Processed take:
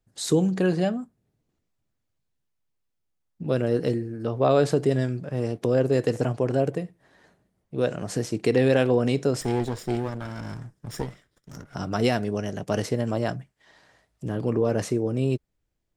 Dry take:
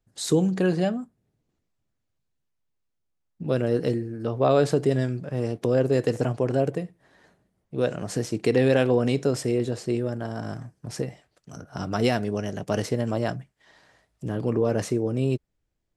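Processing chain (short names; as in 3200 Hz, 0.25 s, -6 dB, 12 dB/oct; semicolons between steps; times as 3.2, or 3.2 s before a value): 9.41–11.75 minimum comb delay 0.57 ms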